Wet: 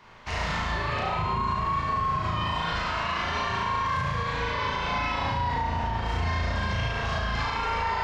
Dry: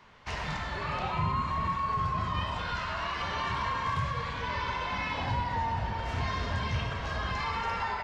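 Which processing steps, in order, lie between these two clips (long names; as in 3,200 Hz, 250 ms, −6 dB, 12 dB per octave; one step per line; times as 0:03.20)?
flutter between parallel walls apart 6.2 metres, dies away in 1 s
brickwall limiter −21.5 dBFS, peak gain reduction 7 dB
level +2.5 dB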